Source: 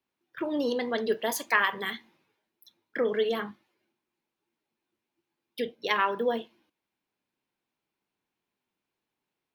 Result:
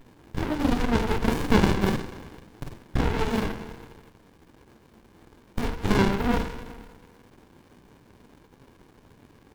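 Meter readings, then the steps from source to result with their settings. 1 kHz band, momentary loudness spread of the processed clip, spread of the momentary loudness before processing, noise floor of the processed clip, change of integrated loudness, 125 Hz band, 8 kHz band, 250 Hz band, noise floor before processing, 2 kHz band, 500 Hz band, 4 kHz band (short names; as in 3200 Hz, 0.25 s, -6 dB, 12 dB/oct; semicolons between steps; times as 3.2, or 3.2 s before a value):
+1.5 dB, 20 LU, 14 LU, -57 dBFS, +3.0 dB, n/a, 0.0 dB, +10.0 dB, under -85 dBFS, -2.5 dB, 0.0 dB, +1.0 dB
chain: per-bin compression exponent 0.6; high shelf 11000 Hz +7 dB; on a send: tapped delay 45/141 ms -3.5/-17.5 dB; on the sum: spring tank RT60 1.3 s, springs 41 ms, chirp 65 ms, DRR 9.5 dB; in parallel at -1.5 dB: compressor, threshold -35 dBFS, peak gain reduction 18 dB; on the sum: flange 1.5 Hz, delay 6.8 ms, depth 7.7 ms, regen -23%; low shelf 270 Hz -8.5 dB; running maximum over 65 samples; gain +6.5 dB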